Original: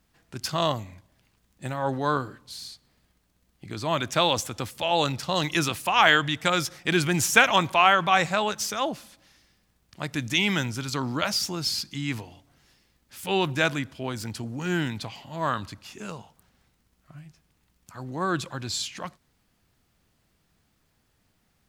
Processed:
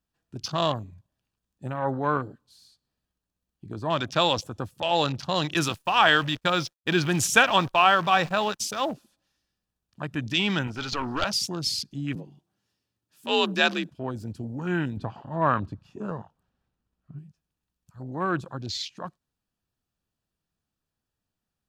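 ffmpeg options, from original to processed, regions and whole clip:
-filter_complex "[0:a]asettb=1/sr,asplit=3[a][b][c];[a]atrim=end=5.544[d];[b]atrim=start=5.54:end=8.94,asetpts=PTS-STARTPTS,afade=t=in:d=0.004:c=qsin,afade=t=out:st=3.396:d=0.004:c=qsin,agate=range=-33dB:threshold=-32dB:ratio=3:release=100:detection=peak,acrusher=bits=7:dc=4:mix=0:aa=0.000001[e];[c]atrim=start=8.936[f];[d][e]acrossfade=d=0.004:c1=hsin:c2=qsin[g];[g][f]acrossfade=d=0.004:c1=qsin:c2=hsin,asettb=1/sr,asplit=3[h][i][j];[h]atrim=end=10.674[k];[i]atrim=start=10.67:end=11.24,asetpts=PTS-STARTPTS,afade=t=in:d=0.004:c=qsin,afade=t=out:st=0.566:d=0.004:c=qsin,acrossover=split=5800[l][m];[m]acompressor=threshold=-49dB:ratio=4:attack=1:release=60[n];[l][n]amix=inputs=2:normalize=0,asplit=2[o][p];[p]highpass=f=720:p=1,volume=13dB,asoftclip=type=tanh:threshold=-8dB[q];[o][q]amix=inputs=2:normalize=0,lowpass=f=6.4k:p=1,volume=-6dB,aeval=exprs='clip(val(0),-1,0.0335)':c=same[r];[j]atrim=start=11.236[s];[k][r]acrossfade=d=0.004:c1=hsin:c2=qsin[t];[t][s]acrossfade=d=0.004:c1=qsin:c2=hsin,asettb=1/sr,asplit=3[u][v][w];[u]atrim=end=12.154[x];[v]atrim=start=12.15:end=13.9,asetpts=PTS-STARTPTS,afade=t=in:d=0.004:c=qsin,afade=t=out:st=1.746:d=0.004:c=qsin,afreqshift=55,adynamicequalizer=threshold=0.0112:dfrequency=1900:dqfactor=0.7:tfrequency=1900:tqfactor=0.7:attack=5:release=100:ratio=0.375:range=3:mode=boostabove:tftype=highshelf[y];[w]atrim=start=13.896[z];[x][y]acrossfade=d=0.004:c1=hsin:c2=qsin[aa];[aa][z]acrossfade=d=0.004:c1=qsin:c2=hsin,asettb=1/sr,asplit=3[ab][ac][ad];[ab]atrim=end=14.974[ae];[ac]atrim=start=14.97:end=17.19,asetpts=PTS-STARTPTS,afade=t=in:d=0.004:c=qsin,afade=t=out:st=2.216:d=0.004:c=qsin,lowpass=f=2.1k:p=1,acontrast=33[af];[ad]atrim=start=17.186[ag];[ae][af]acrossfade=d=0.004:c1=hsin:c2=qsin[ah];[ah][ag]acrossfade=d=0.004:c1=qsin:c2=hsin,bandreject=f=2.1k:w=5.2,afwtdn=0.0141"

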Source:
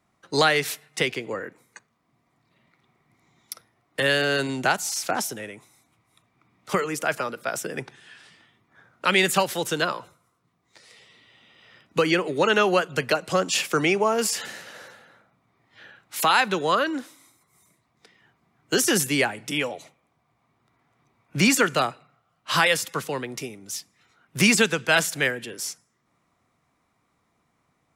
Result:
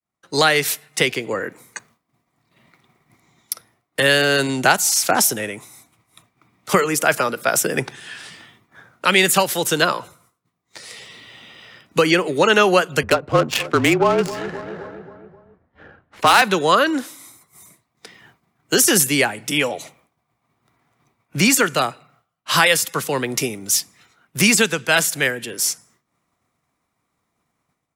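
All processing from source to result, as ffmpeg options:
-filter_complex "[0:a]asettb=1/sr,asplit=3[a][b][c];[a]atrim=end=13.034[d];[b]atrim=start=13.03:end=16.42,asetpts=PTS-STARTPTS,afade=t=in:d=0.004:c=qsin,afade=t=out:st=3.386:d=0.004:c=qsin,asplit=2[e][f];[f]adelay=264,lowpass=f=3.9k:p=1,volume=-15.5dB,asplit=2[g][h];[h]adelay=264,lowpass=f=3.9k:p=1,volume=0.53,asplit=2[i][j];[j]adelay=264,lowpass=f=3.9k:p=1,volume=0.53,asplit=2[k][l];[l]adelay=264,lowpass=f=3.9k:p=1,volume=0.53,asplit=2[m][n];[n]adelay=264,lowpass=f=3.9k:p=1,volume=0.53[o];[e][g][i][k][m][o]amix=inputs=6:normalize=0,atrim=end_sample=149499,afreqshift=-33,adynamicsmooth=sensitivity=1.5:basefreq=880[p];[c]atrim=start=16.416[q];[d][p]acrossfade=d=0.004:c1=hsin:c2=qsin[r];[r][q]acrossfade=d=0.004:c1=qsin:c2=hsin,agate=range=-33dB:threshold=-59dB:ratio=3:detection=peak,highshelf=f=7.9k:g=8.5,dynaudnorm=f=150:g=5:m=13.5dB,volume=-1dB"

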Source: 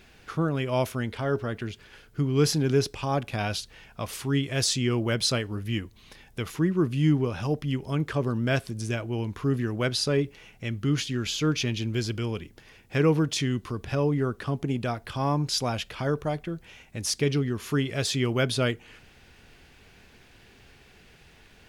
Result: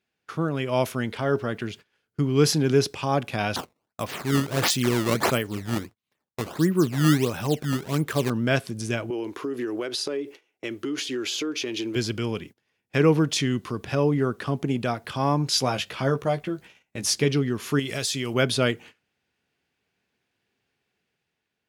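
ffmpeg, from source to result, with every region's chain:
-filter_complex "[0:a]asettb=1/sr,asplit=3[a][b][c];[a]atrim=end=3.564[d];[b]atrim=start=3.56:end=8.3,asetpts=PTS-STARTPTS,afade=t=in:d=0.004:c=qsin,afade=t=out:st=4.736:d=0.004:c=qsin,agate=range=-33dB:threshold=-45dB:ratio=3:release=100:detection=peak,acrusher=samples=16:mix=1:aa=0.000001:lfo=1:lforange=25.6:lforate=1.5[e];[c]atrim=start=8.296[f];[d][e]acrossfade=d=0.004:c1=hsin:c2=qsin[g];[g][f]acrossfade=d=0.004:c1=qsin:c2=hsin,asettb=1/sr,asplit=3[h][i][j];[h]atrim=end=9.104[k];[i]atrim=start=9.1:end=11.96,asetpts=PTS-STARTPTS,afade=t=in:d=0.004:c=qsin,afade=t=out:st=2.856:d=0.004:c=qsin,lowshelf=f=240:t=q:w=3:g=-11,acompressor=threshold=-28dB:ratio=10:attack=3.2:release=140:knee=1:detection=peak[l];[j]atrim=start=11.956[m];[k][l]acrossfade=d=0.004:c1=hsin:c2=qsin[n];[n][m]acrossfade=d=0.004:c1=qsin:c2=hsin,asettb=1/sr,asplit=3[o][p][q];[o]atrim=end=15.504[r];[p]atrim=start=15.5:end=17.25,asetpts=PTS-STARTPTS,afade=t=in:d=0.004:c=qsin,afade=t=out:st=1.746:d=0.004:c=qsin,bandreject=f=50:t=h:w=6,bandreject=f=100:t=h:w=6,asplit=2[s][t];[t]adelay=15,volume=-7dB[u];[s][u]amix=inputs=2:normalize=0,atrim=end_sample=77175[v];[q]atrim=start=17.246[w];[r][v]acrossfade=d=0.004:c1=hsin:c2=qsin[x];[x][w]acrossfade=d=0.004:c1=qsin:c2=hsin,asettb=1/sr,asplit=3[y][z][aa];[y]atrim=end=17.794[ab];[z]atrim=start=17.79:end=18.34,asetpts=PTS-STARTPTS,afade=t=in:d=0.004:c=qsin,afade=t=out:st=0.546:d=0.004:c=qsin,highshelf=f=3.6k:g=11.5,acompressor=threshold=-28dB:ratio=4:attack=3.2:release=140:knee=1:detection=peak[ac];[aa]atrim=start=18.336[ad];[ab][ac]acrossfade=d=0.004:c1=hsin:c2=qsin[ae];[ae][ad]acrossfade=d=0.004:c1=qsin:c2=hsin,highpass=130,agate=range=-25dB:threshold=-45dB:ratio=16:detection=peak,dynaudnorm=f=120:g=11:m=3.5dB"

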